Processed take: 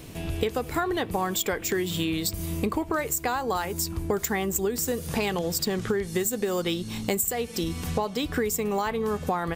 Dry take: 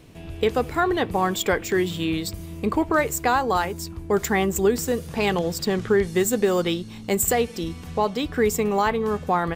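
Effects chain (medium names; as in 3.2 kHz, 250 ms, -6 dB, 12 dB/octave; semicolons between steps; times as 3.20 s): treble shelf 6.3 kHz +9.5 dB; compression 10:1, threshold -29 dBFS, peak gain reduction 17.5 dB; trim +5.5 dB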